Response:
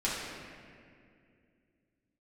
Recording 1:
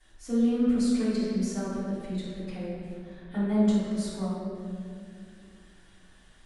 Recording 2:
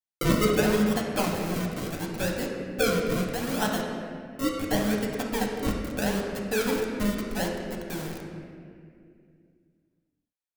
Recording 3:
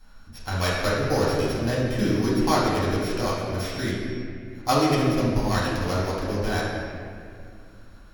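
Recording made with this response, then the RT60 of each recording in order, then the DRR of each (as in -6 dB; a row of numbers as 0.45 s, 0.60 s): 3; 2.3 s, 2.3 s, 2.3 s; -17.0 dB, -1.0 dB, -8.5 dB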